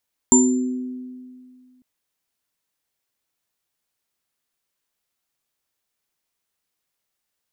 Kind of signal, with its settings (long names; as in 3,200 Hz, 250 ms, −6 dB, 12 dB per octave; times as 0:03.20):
inharmonic partials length 1.50 s, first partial 253 Hz, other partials 376/936/7,220 Hz, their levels −6.5/−8/3 dB, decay 2.15 s, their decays 1.33/0.28/0.48 s, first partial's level −12 dB